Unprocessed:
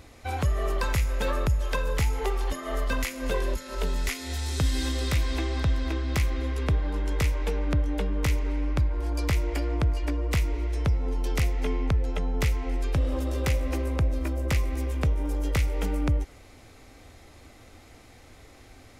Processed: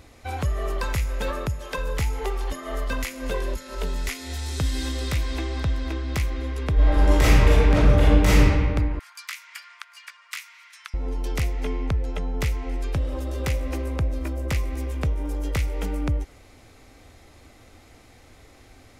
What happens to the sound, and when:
0:01.30–0:01.77: high-pass filter 51 Hz → 120 Hz
0:06.74–0:08.45: thrown reverb, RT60 1.7 s, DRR −11.5 dB
0:08.99–0:10.94: Butterworth high-pass 1,200 Hz
0:12.98–0:13.40: notch comb filter 240 Hz

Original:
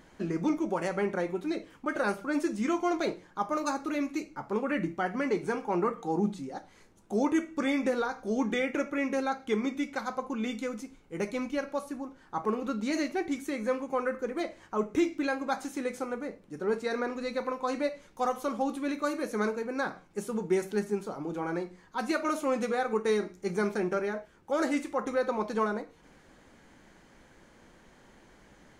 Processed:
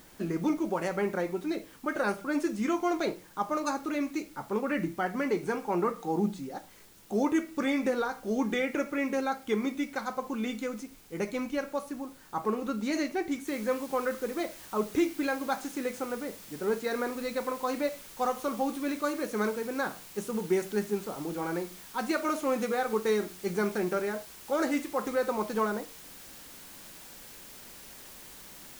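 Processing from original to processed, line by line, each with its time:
0:13.47: noise floor change −58 dB −49 dB

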